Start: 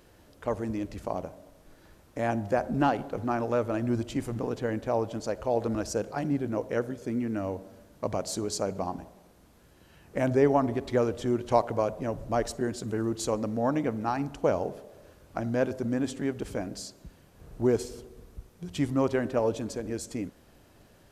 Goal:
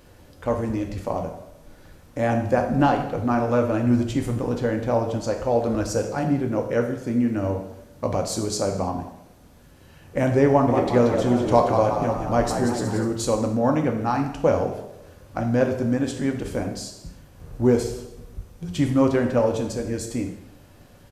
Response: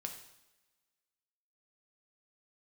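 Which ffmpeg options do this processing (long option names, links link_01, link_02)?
-filter_complex "[0:a]lowshelf=frequency=97:gain=6,asplit=3[link_01][link_02][link_03];[link_01]afade=type=out:start_time=10.67:duration=0.02[link_04];[link_02]asplit=8[link_05][link_06][link_07][link_08][link_09][link_10][link_11][link_12];[link_06]adelay=181,afreqshift=70,volume=-7dB[link_13];[link_07]adelay=362,afreqshift=140,volume=-12.2dB[link_14];[link_08]adelay=543,afreqshift=210,volume=-17.4dB[link_15];[link_09]adelay=724,afreqshift=280,volume=-22.6dB[link_16];[link_10]adelay=905,afreqshift=350,volume=-27.8dB[link_17];[link_11]adelay=1086,afreqshift=420,volume=-33dB[link_18];[link_12]adelay=1267,afreqshift=490,volume=-38.2dB[link_19];[link_05][link_13][link_14][link_15][link_16][link_17][link_18][link_19]amix=inputs=8:normalize=0,afade=type=in:start_time=10.67:duration=0.02,afade=type=out:start_time=13.04:duration=0.02[link_20];[link_03]afade=type=in:start_time=13.04:duration=0.02[link_21];[link_04][link_20][link_21]amix=inputs=3:normalize=0[link_22];[1:a]atrim=start_sample=2205,afade=type=out:start_time=0.38:duration=0.01,atrim=end_sample=17199[link_23];[link_22][link_23]afir=irnorm=-1:irlink=0,volume=7.5dB"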